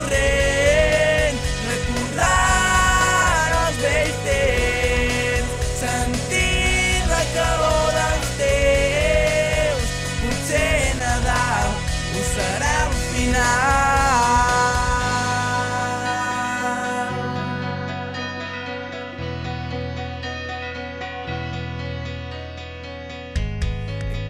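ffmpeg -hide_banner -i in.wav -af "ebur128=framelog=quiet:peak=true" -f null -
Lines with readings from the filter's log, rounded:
Integrated loudness:
  I:         -20.2 LUFS
  Threshold: -30.4 LUFS
Loudness range:
  LRA:        10.8 LU
  Threshold: -40.3 LUFS
  LRA low:   -28.6 LUFS
  LRA high:  -17.8 LUFS
True peak:
  Peak:       -4.7 dBFS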